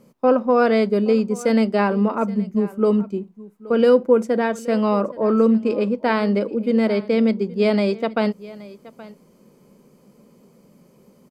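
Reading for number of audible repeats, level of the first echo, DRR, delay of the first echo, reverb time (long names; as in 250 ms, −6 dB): 1, −19.5 dB, no reverb audible, 823 ms, no reverb audible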